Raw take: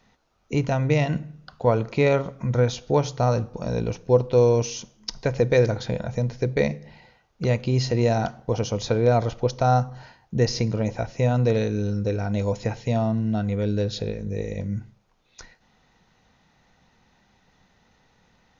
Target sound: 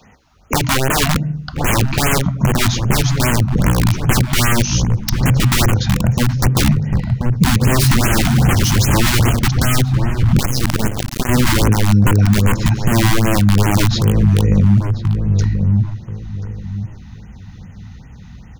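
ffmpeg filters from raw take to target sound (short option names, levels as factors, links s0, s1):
-filter_complex "[0:a]asettb=1/sr,asplit=3[s0][s1][s2];[s0]atrim=end=7.614[s3];[s1]atrim=start=7.61:end=9.39,asetpts=PTS-STARTPTS,afade=t=in:d=0.004:c=qsin,afade=t=out:st=1.776:d=0.004:c=qsin,aeval=exprs='val(0)+0.5*0.0596*sgn(val(0))':c=same[s4];[s2]atrim=start=9.386[s5];[s3][s4]acrossfade=d=0.004:c1=hsin:c2=qsin[s6];[s6][s5]acrossfade=d=0.004:c1=qsin:c2=hsin,highpass=47,aeval=exprs='(mod(8.91*val(0)+1,2)-1)/8.91':c=same,lowshelf=f=72:g=5,asplit=2[s7][s8];[s8]adelay=1032,lowpass=f=1300:p=1,volume=0.251,asplit=2[s9][s10];[s10]adelay=1032,lowpass=f=1300:p=1,volume=0.25,asplit=2[s11][s12];[s12]adelay=1032,lowpass=f=1300:p=1,volume=0.25[s13];[s9][s11][s13]amix=inputs=3:normalize=0[s14];[s7][s14]amix=inputs=2:normalize=0,acrossover=split=190|3000[s15][s16][s17];[s15]acompressor=threshold=0.0178:ratio=4[s18];[s18][s16][s17]amix=inputs=3:normalize=0,asubboost=boost=6.5:cutoff=200,asettb=1/sr,asplit=3[s19][s20][s21];[s19]atrim=end=10.394[s22];[s20]atrim=start=10.39:end=11.29,asetpts=PTS-STARTPTS,afade=t=in:d=0.004:c=qsin,afade=t=out:st=0.896:d=0.004:c=qsin,acrusher=bits=3:dc=4:mix=0:aa=0.000001[s23];[s21]atrim=start=11.286[s24];[s22][s23]acrossfade=d=0.004:c1=hsin:c2=qsin[s25];[s25][s24]acrossfade=d=0.004:c1=qsin:c2=hsin,acompressor=threshold=0.0631:ratio=2.5,alimiter=level_in=6.31:limit=0.891:release=50:level=0:latency=1,afftfilt=real='re*(1-between(b*sr/1024,410*pow(4700/410,0.5+0.5*sin(2*PI*2.5*pts/sr))/1.41,410*pow(4700/410,0.5+0.5*sin(2*PI*2.5*pts/sr))*1.41))':imag='im*(1-between(b*sr/1024,410*pow(4700/410,0.5+0.5*sin(2*PI*2.5*pts/sr))/1.41,410*pow(4700/410,0.5+0.5*sin(2*PI*2.5*pts/sr))*1.41))':win_size=1024:overlap=0.75,volume=0.794"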